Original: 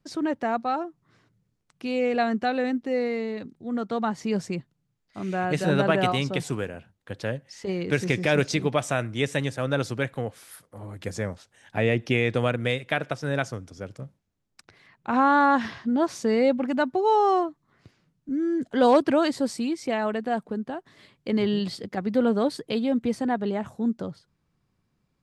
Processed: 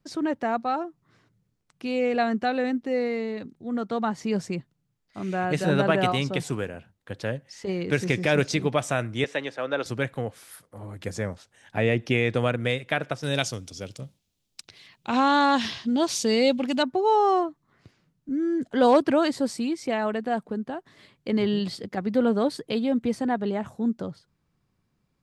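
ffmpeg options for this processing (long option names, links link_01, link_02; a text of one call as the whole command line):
ffmpeg -i in.wav -filter_complex "[0:a]asettb=1/sr,asplit=3[link_01][link_02][link_03];[link_01]atrim=end=9.244[link_04];[link_02]atrim=start=9.24:end=9.86,asetpts=PTS-STARTPTS,afade=type=in:duration=0.004:curve=qsin,afade=type=out:start_time=0.616:duration=0.004:curve=qsin,acrossover=split=280 4900:gain=0.0794 1 0.141[link_05][link_06][link_07];[link_05][link_06][link_07]amix=inputs=3:normalize=0[link_08];[link_03]atrim=start=9.856[link_09];[link_04][link_08]acrossfade=duration=0.004:curve1=hsin:curve2=qsin[link_10];[link_10][link_09]acrossfade=duration=0.004:curve1=qsin:curve2=hsin,asettb=1/sr,asplit=3[link_11][link_12][link_13];[link_11]atrim=end=13.234[link_14];[link_12]atrim=start=13.23:end=16.83,asetpts=PTS-STARTPTS,afade=type=in:duration=0.004:curve=qsin,afade=type=out:start_time=3.596:duration=0.004:curve=qsin,highshelf=frequency=2300:width_type=q:width=1.5:gain=10[link_15];[link_13]atrim=start=16.826[link_16];[link_14][link_15]acrossfade=duration=0.004:curve1=hsin:curve2=qsin[link_17];[link_17][link_16]acrossfade=duration=0.004:curve1=qsin:curve2=hsin" out.wav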